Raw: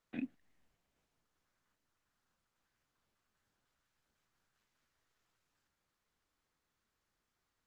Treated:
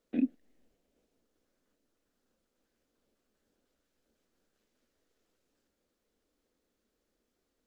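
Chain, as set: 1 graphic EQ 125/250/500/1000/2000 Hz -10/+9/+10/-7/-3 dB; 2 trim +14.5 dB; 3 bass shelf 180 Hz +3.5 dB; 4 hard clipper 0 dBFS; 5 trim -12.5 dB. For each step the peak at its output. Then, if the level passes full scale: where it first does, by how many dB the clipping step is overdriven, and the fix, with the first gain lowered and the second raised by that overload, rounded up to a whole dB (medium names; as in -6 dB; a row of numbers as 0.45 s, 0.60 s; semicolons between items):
-21.0 dBFS, -6.5 dBFS, -5.5 dBFS, -5.5 dBFS, -18.0 dBFS; nothing clips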